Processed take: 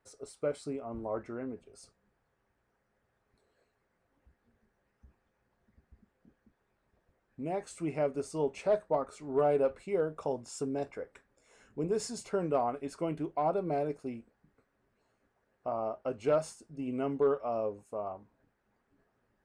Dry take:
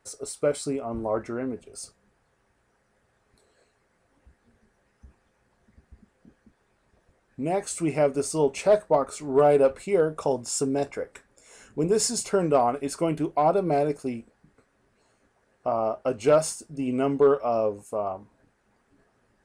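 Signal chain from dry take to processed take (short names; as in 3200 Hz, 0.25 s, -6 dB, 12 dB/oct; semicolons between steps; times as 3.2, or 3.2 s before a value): high shelf 5800 Hz -12 dB; gain -8.5 dB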